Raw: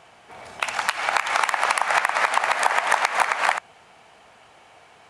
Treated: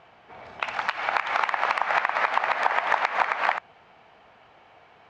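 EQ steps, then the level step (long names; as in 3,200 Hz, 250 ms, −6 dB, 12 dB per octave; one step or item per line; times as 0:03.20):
low-pass filter 10,000 Hz 12 dB per octave
high-frequency loss of the air 210 metres
−1.5 dB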